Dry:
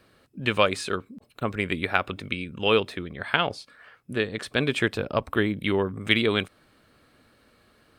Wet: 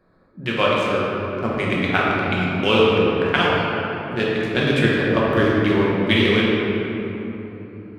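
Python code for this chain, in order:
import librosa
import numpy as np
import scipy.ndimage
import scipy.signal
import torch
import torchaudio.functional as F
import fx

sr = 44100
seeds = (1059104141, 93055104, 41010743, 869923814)

y = fx.wiener(x, sr, points=15)
y = fx.rider(y, sr, range_db=3, speed_s=2.0)
y = fx.room_shoebox(y, sr, seeds[0], volume_m3=220.0, walls='hard', distance_m=1.0)
y = y * 10.0 ** (1.0 / 20.0)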